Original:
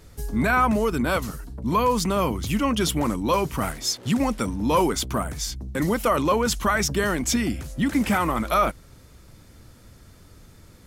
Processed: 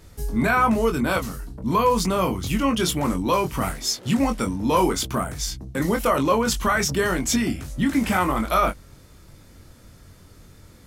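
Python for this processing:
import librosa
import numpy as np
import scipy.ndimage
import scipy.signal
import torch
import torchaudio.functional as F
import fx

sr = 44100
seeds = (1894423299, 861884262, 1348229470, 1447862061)

y = fx.doubler(x, sr, ms=22.0, db=-5.5)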